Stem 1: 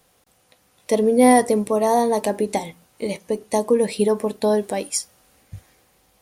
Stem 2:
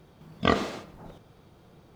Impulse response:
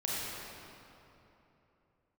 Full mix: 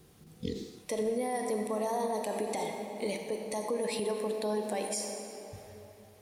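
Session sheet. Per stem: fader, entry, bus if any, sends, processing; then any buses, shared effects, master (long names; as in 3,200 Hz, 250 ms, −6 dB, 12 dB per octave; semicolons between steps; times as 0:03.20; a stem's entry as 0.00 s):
−6.0 dB, 0.00 s, send −8 dB, low-shelf EQ 260 Hz −9.5 dB; downward compressor 5 to 1, threshold −23 dBFS, peak gain reduction 11.5 dB
−3.5 dB, 0.00 s, no send, brick-wall band-stop 500–1,700 Hz; flat-topped bell 1,800 Hz −15.5 dB; automatic ducking −14 dB, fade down 1.90 s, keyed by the first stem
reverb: on, RT60 3.1 s, pre-delay 28 ms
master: brickwall limiter −23.5 dBFS, peak gain reduction 9.5 dB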